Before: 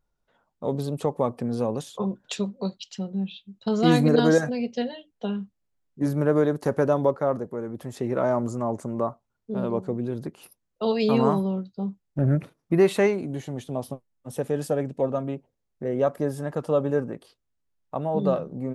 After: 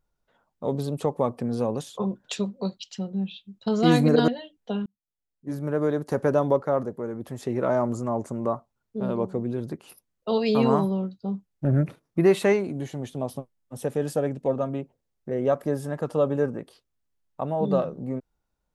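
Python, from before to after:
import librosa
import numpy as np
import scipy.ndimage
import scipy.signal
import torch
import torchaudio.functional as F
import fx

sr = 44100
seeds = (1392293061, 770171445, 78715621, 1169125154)

y = fx.edit(x, sr, fx.cut(start_s=4.28, length_s=0.54),
    fx.fade_in_span(start_s=5.4, length_s=1.48), tone=tone)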